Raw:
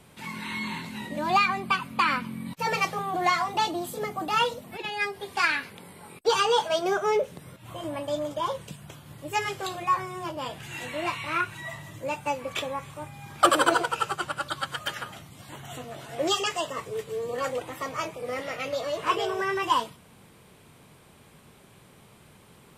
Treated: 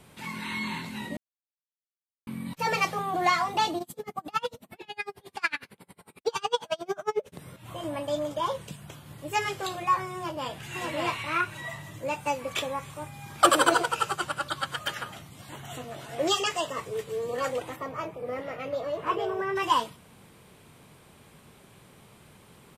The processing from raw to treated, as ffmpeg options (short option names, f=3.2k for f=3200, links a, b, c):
-filter_complex "[0:a]asplit=3[a][b][c];[a]afade=t=out:st=3.78:d=0.02[d];[b]aeval=exprs='val(0)*pow(10,-34*(0.5-0.5*cos(2*PI*11*n/s))/20)':c=same,afade=t=in:st=3.78:d=0.02,afade=t=out:st=7.32:d=0.02[e];[c]afade=t=in:st=7.32:d=0.02[f];[d][e][f]amix=inputs=3:normalize=0,asplit=2[g][h];[h]afade=t=in:st=10.16:d=0.01,afade=t=out:st=10.63:d=0.01,aecho=0:1:590|1180|1770:0.841395|0.126209|0.0189314[i];[g][i]amix=inputs=2:normalize=0,asettb=1/sr,asplit=3[j][k][l];[j]atrim=end=12.194[m];[k]atrim=start=12.19:end=14.38,asetpts=PTS-STARTPTS,afade=t=in:d=0.004:c=qsin,afade=t=out:st=2.186:d=0.004:c=qsin,bass=f=250:g=0,treble=f=4k:g=3[n];[l]atrim=start=14.376[o];[m][n]acrossfade=d=0.004:c1=hsin:c2=qsin[p];[p][o]acrossfade=d=0.004:c1=qsin:c2=hsin,asplit=3[q][r][s];[q]afade=t=out:st=17.75:d=0.02[t];[r]equalizer=f=7k:t=o:w=2.9:g=-14.5,afade=t=in:st=17.75:d=0.02,afade=t=out:st=19.55:d=0.02[u];[s]afade=t=in:st=19.55:d=0.02[v];[t][u][v]amix=inputs=3:normalize=0,asplit=3[w][x][y];[w]atrim=end=1.17,asetpts=PTS-STARTPTS,afade=t=out:st=1.166:d=0.004:c=hsin[z];[x]atrim=start=1.17:end=2.27,asetpts=PTS-STARTPTS,volume=0[aa];[y]atrim=start=2.27,asetpts=PTS-STARTPTS,afade=t=in:d=0.004:c=hsin[ab];[z][aa][ab]concat=n=3:v=0:a=1"